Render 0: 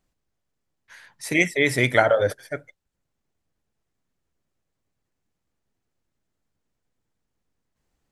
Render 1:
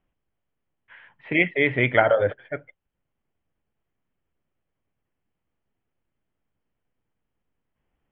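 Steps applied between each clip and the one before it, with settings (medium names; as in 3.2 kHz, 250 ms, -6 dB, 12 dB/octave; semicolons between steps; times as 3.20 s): Chebyshev low-pass 3.2 kHz, order 6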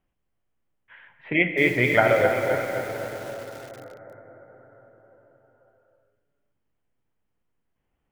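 reverberation RT60 5.6 s, pre-delay 8 ms, DRR 5.5 dB; bit-crushed delay 262 ms, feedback 55%, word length 6-bit, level -7 dB; trim -1 dB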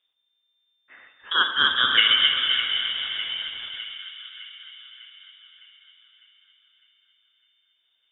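frequency inversion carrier 3.6 kHz; two-band feedback delay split 1.5 kHz, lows 86 ms, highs 605 ms, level -10 dB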